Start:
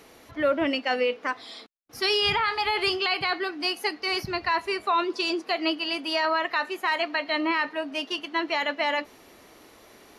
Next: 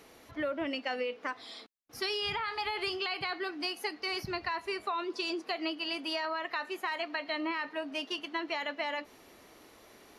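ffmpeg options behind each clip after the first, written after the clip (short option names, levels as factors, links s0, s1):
-af "acompressor=threshold=0.0501:ratio=6,volume=0.596"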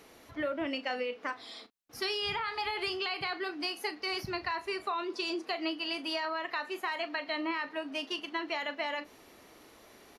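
-filter_complex "[0:a]asplit=2[s0][s1];[s1]adelay=37,volume=0.224[s2];[s0][s2]amix=inputs=2:normalize=0"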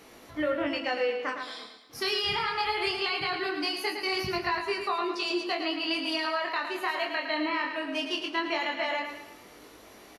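-filter_complex "[0:a]asplit=2[s0][s1];[s1]aecho=0:1:110|220|330|440|550:0.447|0.201|0.0905|0.0407|0.0183[s2];[s0][s2]amix=inputs=2:normalize=0,flanger=delay=19.5:depth=6.6:speed=0.2,volume=2.24"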